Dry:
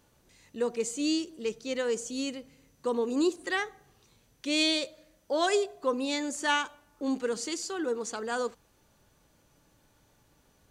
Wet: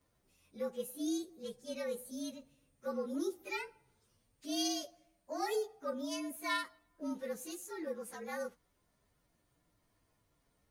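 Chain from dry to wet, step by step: inharmonic rescaling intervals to 112%; gain -7 dB

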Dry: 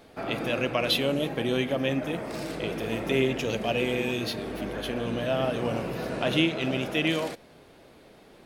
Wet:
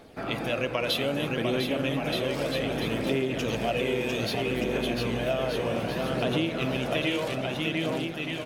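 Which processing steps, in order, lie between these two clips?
on a send: bouncing-ball echo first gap 0.7 s, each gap 0.75×, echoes 5; on the sum: phaser 0.63 Hz, delay 2.2 ms, feedback 29%; compressor, threshold -23 dBFS, peak gain reduction 7 dB

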